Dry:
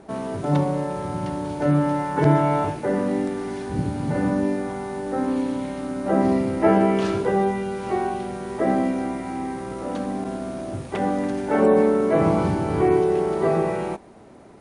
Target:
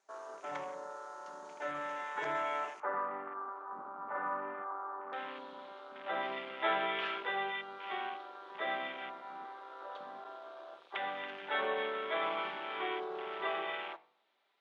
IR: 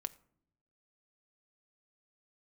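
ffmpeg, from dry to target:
-filter_complex "[0:a]highpass=1200,afwtdn=0.0112,asetnsamples=n=441:p=0,asendcmd='2.8 lowpass f 1200;5.13 lowpass f 3500',lowpass=f=6600:t=q:w=4[s0];[1:a]atrim=start_sample=2205,asetrate=41895,aresample=44100[s1];[s0][s1]afir=irnorm=-1:irlink=0,volume=0.708"

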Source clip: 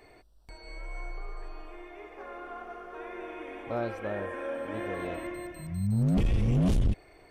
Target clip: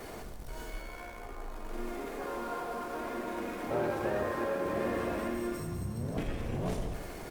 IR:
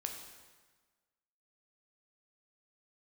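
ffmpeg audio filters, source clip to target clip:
-filter_complex "[0:a]aeval=exprs='val(0)+0.5*0.0126*sgn(val(0))':c=same,acrossover=split=390|3000[s0][s1][s2];[s0]acompressor=threshold=0.0141:ratio=8[s3];[s3][s1][s2]amix=inputs=3:normalize=0,asplit=4[s4][s5][s6][s7];[s5]asetrate=29433,aresample=44100,atempo=1.49831,volume=0.708[s8];[s6]asetrate=35002,aresample=44100,atempo=1.25992,volume=0.251[s9];[s7]asetrate=66075,aresample=44100,atempo=0.66742,volume=0.2[s10];[s4][s8][s9][s10]amix=inputs=4:normalize=0,asplit=2[s11][s12];[s12]adynamicsmooth=sensitivity=4.5:basefreq=1400,volume=1.33[s13];[s11][s13]amix=inputs=2:normalize=0,highshelf=f=5400:g=6.5[s14];[1:a]atrim=start_sample=2205[s15];[s14][s15]afir=irnorm=-1:irlink=0,volume=0.398" -ar 48000 -c:a libopus -b:a 48k

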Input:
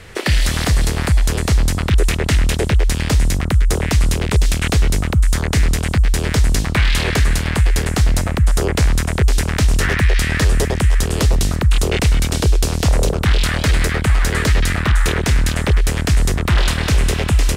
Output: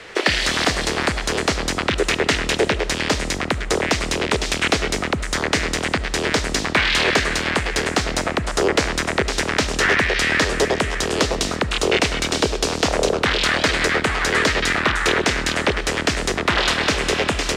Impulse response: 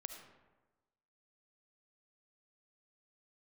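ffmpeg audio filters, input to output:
-filter_complex "[0:a]acrossover=split=250 7300:gain=0.112 1 0.126[s0][s1][s2];[s0][s1][s2]amix=inputs=3:normalize=0,asplit=2[s3][s4];[1:a]atrim=start_sample=2205[s5];[s4][s5]afir=irnorm=-1:irlink=0,volume=0.891[s6];[s3][s6]amix=inputs=2:normalize=0"

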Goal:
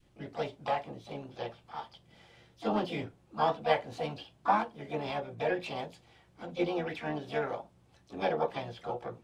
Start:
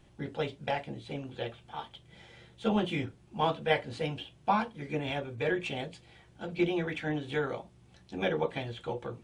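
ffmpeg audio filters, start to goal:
-filter_complex "[0:a]asplit=3[s0][s1][s2];[s1]asetrate=58866,aresample=44100,atempo=0.749154,volume=0.178[s3];[s2]asetrate=66075,aresample=44100,atempo=0.66742,volume=0.398[s4];[s0][s3][s4]amix=inputs=3:normalize=0,adynamicequalizer=threshold=0.00708:dfrequency=760:dqfactor=0.91:tfrequency=760:tqfactor=0.91:attack=5:release=100:ratio=0.375:range=4:mode=boostabove:tftype=bell,volume=0.501"

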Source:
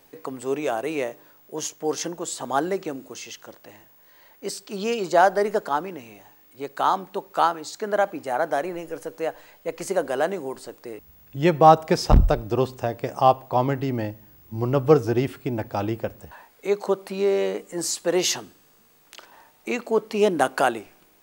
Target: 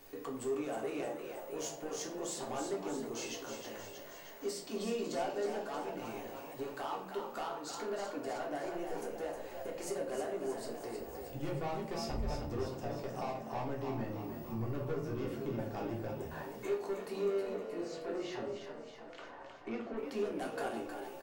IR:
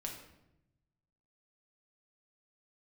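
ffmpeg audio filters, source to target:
-filter_complex "[0:a]asettb=1/sr,asplit=3[s0][s1][s2];[s0]atrim=end=17.414[s3];[s1]atrim=start=17.41:end=19.97,asetpts=PTS-STARTPTS,afade=t=in:d=0.004:c=qsin,afade=t=out:st=2.556:d=0.004:c=qsin,lowpass=1900[s4];[s2]atrim=start=19.966[s5];[s3][s4]acrossfade=d=0.004:c1=hsin:c2=qsin[s6];[s6][s5]acrossfade=d=0.004:c1=qsin:c2=hsin,acompressor=threshold=0.01:ratio=2.5,flanger=delay=1.1:depth=6.1:regen=-86:speed=1:shape=triangular,asoftclip=type=tanh:threshold=0.0126,asplit=9[s7][s8][s9][s10][s11][s12][s13][s14][s15];[s8]adelay=314,afreqshift=46,volume=0.447[s16];[s9]adelay=628,afreqshift=92,volume=0.275[s17];[s10]adelay=942,afreqshift=138,volume=0.172[s18];[s11]adelay=1256,afreqshift=184,volume=0.106[s19];[s12]adelay=1570,afreqshift=230,volume=0.0661[s20];[s13]adelay=1884,afreqshift=276,volume=0.0407[s21];[s14]adelay=2198,afreqshift=322,volume=0.0254[s22];[s15]adelay=2512,afreqshift=368,volume=0.0157[s23];[s7][s16][s17][s18][s19][s20][s21][s22][s23]amix=inputs=9:normalize=0[s24];[1:a]atrim=start_sample=2205,asetrate=83790,aresample=44100[s25];[s24][s25]afir=irnorm=-1:irlink=0,volume=3.55"

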